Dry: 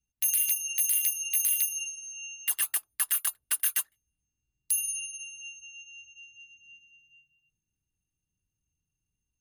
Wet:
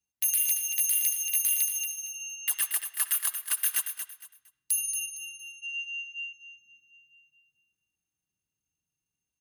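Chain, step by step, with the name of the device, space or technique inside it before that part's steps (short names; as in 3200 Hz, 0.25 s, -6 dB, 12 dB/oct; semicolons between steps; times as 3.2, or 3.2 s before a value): filtered reverb send (on a send at -14 dB: HPF 480 Hz + LPF 4800 Hz 12 dB/oct + reverb RT60 0.70 s, pre-delay 52 ms); on the sum: HPF 290 Hz 6 dB/oct; 5.61–6.33 band shelf 2000 Hz +12 dB; feedback echo 0.23 s, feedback 27%, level -8.5 dB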